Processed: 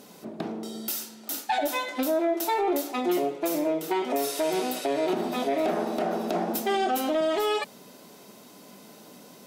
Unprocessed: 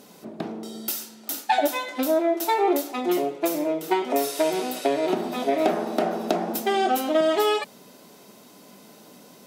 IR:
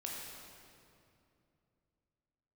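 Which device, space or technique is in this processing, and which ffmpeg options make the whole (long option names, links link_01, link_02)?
soft clipper into limiter: -af "asoftclip=type=tanh:threshold=-9.5dB,alimiter=limit=-18dB:level=0:latency=1:release=59"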